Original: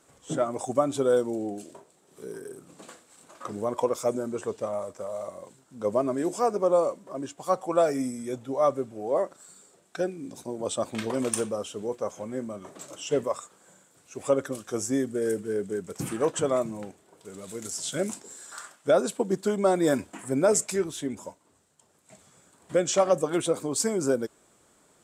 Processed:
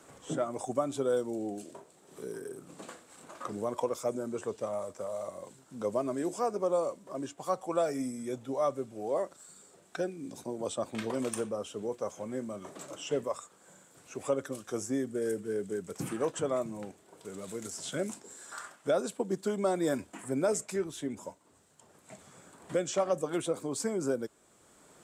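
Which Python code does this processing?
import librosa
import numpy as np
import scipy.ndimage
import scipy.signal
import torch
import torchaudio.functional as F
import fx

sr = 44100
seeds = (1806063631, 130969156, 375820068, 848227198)

y = fx.band_squash(x, sr, depth_pct=40)
y = F.gain(torch.from_numpy(y), -5.5).numpy()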